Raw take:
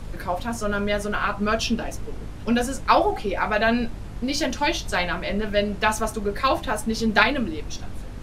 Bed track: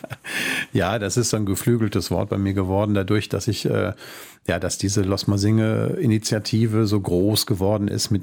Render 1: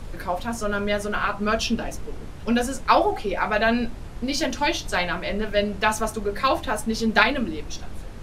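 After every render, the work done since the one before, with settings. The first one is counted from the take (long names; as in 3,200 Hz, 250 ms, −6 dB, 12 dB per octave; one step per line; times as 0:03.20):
hum removal 50 Hz, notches 6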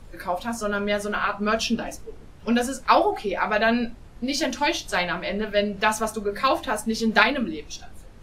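noise reduction from a noise print 9 dB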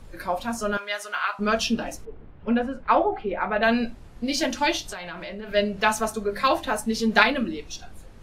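0:00.77–0:01.39: high-pass filter 1,000 Hz
0:02.05–0:03.63: high-frequency loss of the air 480 metres
0:04.82–0:05.50: downward compressor 12 to 1, threshold −31 dBFS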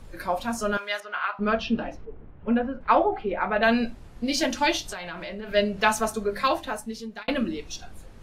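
0:01.00–0:02.81: high-frequency loss of the air 290 metres
0:06.25–0:07.28: fade out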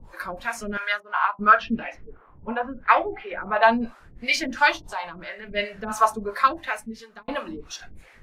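two-band tremolo in antiphase 2.9 Hz, depth 100%, crossover 460 Hz
auto-filter bell 0.81 Hz 920–2,200 Hz +17 dB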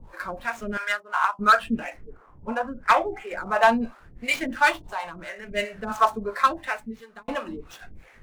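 running median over 9 samples
gain into a clipping stage and back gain 9.5 dB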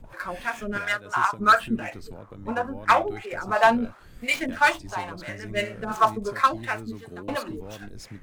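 mix in bed track −21 dB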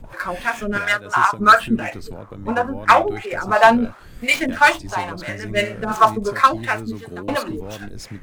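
level +7 dB
brickwall limiter −3 dBFS, peak gain reduction 1 dB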